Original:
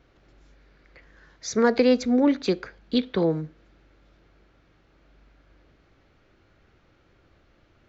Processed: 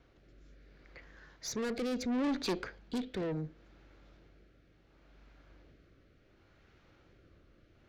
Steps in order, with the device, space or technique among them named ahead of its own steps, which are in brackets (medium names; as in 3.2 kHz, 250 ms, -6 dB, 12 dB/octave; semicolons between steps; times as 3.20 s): overdriven rotary cabinet (valve stage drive 29 dB, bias 0.35; rotary cabinet horn 0.7 Hz)